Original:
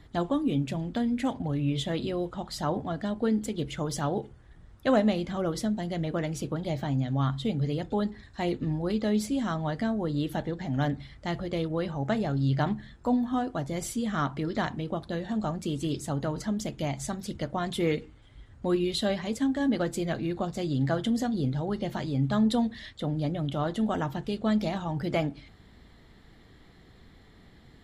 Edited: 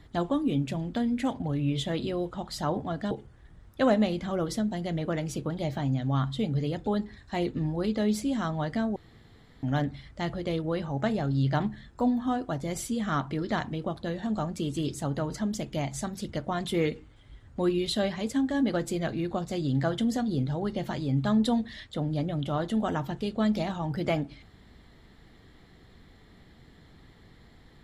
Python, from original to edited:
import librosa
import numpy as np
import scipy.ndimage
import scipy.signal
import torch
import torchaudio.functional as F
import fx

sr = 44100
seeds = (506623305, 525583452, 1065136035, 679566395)

y = fx.edit(x, sr, fx.cut(start_s=3.11, length_s=1.06),
    fx.room_tone_fill(start_s=10.02, length_s=0.67), tone=tone)